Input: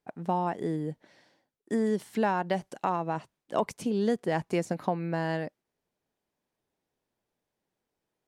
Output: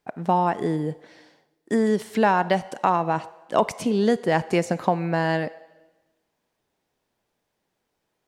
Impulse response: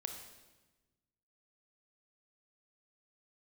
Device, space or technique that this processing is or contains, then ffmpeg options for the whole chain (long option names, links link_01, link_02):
filtered reverb send: -filter_complex "[0:a]asplit=2[link_01][link_02];[link_02]highpass=490,lowpass=8200[link_03];[1:a]atrim=start_sample=2205[link_04];[link_03][link_04]afir=irnorm=-1:irlink=0,volume=-7dB[link_05];[link_01][link_05]amix=inputs=2:normalize=0,volume=6.5dB"